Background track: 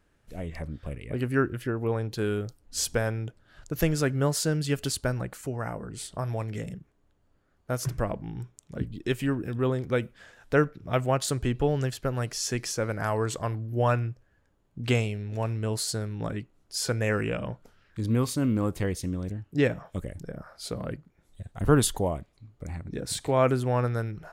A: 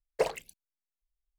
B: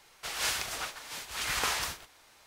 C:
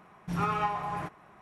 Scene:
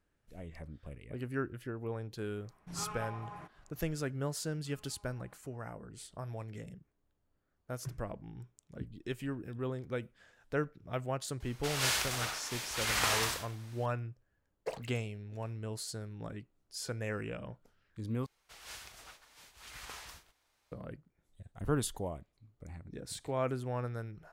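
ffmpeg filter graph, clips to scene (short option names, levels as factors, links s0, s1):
-filter_complex "[3:a]asplit=2[s0][s1];[2:a]asplit=2[s2][s3];[0:a]volume=0.282[s4];[s1]acompressor=threshold=0.00501:ratio=6:attack=3.2:release=140:knee=1:detection=peak[s5];[s2]aecho=1:1:60|97:0.562|0.447[s6];[s3]lowshelf=f=95:g=9.5[s7];[s4]asplit=2[s8][s9];[s8]atrim=end=18.264[s10];[s7]atrim=end=2.46,asetpts=PTS-STARTPTS,volume=0.141[s11];[s9]atrim=start=20.716[s12];[s0]atrim=end=1.41,asetpts=PTS-STARTPTS,volume=0.224,afade=t=in:d=0.004:c=hsin,afade=t=out:st=1.406:d=0.004:c=hsin,adelay=2390[s13];[s5]atrim=end=1.41,asetpts=PTS-STARTPTS,volume=0.126,afade=t=in:d=0.004:c=hsin,afade=t=out:st=1.406:d=0.004:c=hsin,adelay=189189S[s14];[s6]atrim=end=2.46,asetpts=PTS-STARTPTS,volume=0.841,afade=t=in:d=0.004:c=hsin,afade=t=out:st=2.456:d=0.004:c=hsin,adelay=11400[s15];[1:a]atrim=end=1.38,asetpts=PTS-STARTPTS,volume=0.282,afade=t=in:d=0.004:c=hsin,afade=t=out:st=1.376:d=0.004:c=hsin,adelay=14470[s16];[s10][s11]acrossfade=d=0.004:c1=hsin:c2=hsin[s17];[s17][s12]acrossfade=d=0.004:c1=hsin:c2=hsin[s18];[s18][s13][s14][s15][s16]amix=inputs=5:normalize=0"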